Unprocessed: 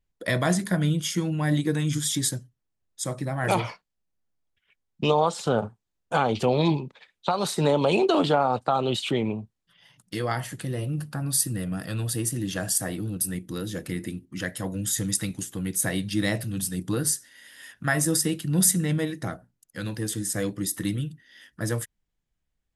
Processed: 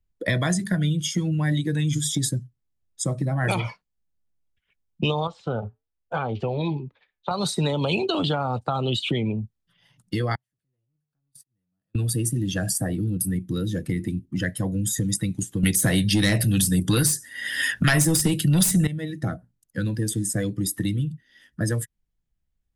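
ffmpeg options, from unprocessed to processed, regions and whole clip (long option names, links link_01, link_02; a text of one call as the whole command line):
ffmpeg -i in.wav -filter_complex "[0:a]asettb=1/sr,asplit=3[link_01][link_02][link_03];[link_01]atrim=end=5.274[link_04];[link_02]atrim=start=5.27:end=7.31,asetpts=PTS-STARTPTS,afade=type=in:duration=0.004:curve=qsin,afade=type=out:start_time=2.036:duration=0.004:curve=qsin,lowpass=3600,equalizer=frequency=170:width_type=o:width=1.6:gain=-6,flanger=delay=4.6:depth=1.6:regen=-86:speed=1.3:shape=triangular[link_05];[link_03]atrim=start=7.306[link_06];[link_04][link_05]acrossfade=duration=0.004:curve1=hsin:curve2=qsin[link_07];[link_07][link_06]acrossfade=duration=0.004:curve1=qsin:curve2=hsin,asettb=1/sr,asplit=3[link_08][link_09][link_10];[link_08]atrim=end=10.354[link_11];[link_09]atrim=start=10.35:end=11.95,asetpts=PTS-STARTPTS,afade=type=in:duration=0.004:curve=qsin,afade=type=out:start_time=1.596:duration=0.004:curve=qsin,aeval=exprs='val(0)+0.5*0.0224*sgn(val(0))':channel_layout=same,agate=range=-52dB:threshold=-20dB:ratio=16:release=100:detection=peak,acompressor=threshold=-43dB:ratio=8:attack=3.2:release=140:knee=1:detection=peak[link_12];[link_10]atrim=start=11.946[link_13];[link_11][link_12]acrossfade=duration=0.004:curve1=hsin:curve2=qsin[link_14];[link_14][link_13]acrossfade=duration=0.004:curve1=qsin:curve2=hsin,asettb=1/sr,asplit=3[link_15][link_16][link_17];[link_15]atrim=end=15.634[link_18];[link_16]atrim=start=15.63:end=18.87,asetpts=PTS-STARTPTS,afade=type=in:duration=0.004:curve=qsin,afade=type=out:start_time=3.236:duration=0.004:curve=qsin,highpass=46,acontrast=59,aeval=exprs='0.668*sin(PI/2*2.24*val(0)/0.668)':channel_layout=same[link_19];[link_17]atrim=start=18.866[link_20];[link_18][link_19]acrossfade=duration=0.004:curve1=hsin:curve2=qsin[link_21];[link_21][link_20]acrossfade=duration=0.004:curve1=qsin:curve2=hsin,afftdn=noise_reduction=12:noise_floor=-34,lowshelf=frequency=220:gain=10,acrossover=split=130|1900[link_22][link_23][link_24];[link_22]acompressor=threshold=-38dB:ratio=4[link_25];[link_23]acompressor=threshold=-33dB:ratio=4[link_26];[link_24]acompressor=threshold=-32dB:ratio=4[link_27];[link_25][link_26][link_27]amix=inputs=3:normalize=0,volume=6.5dB" out.wav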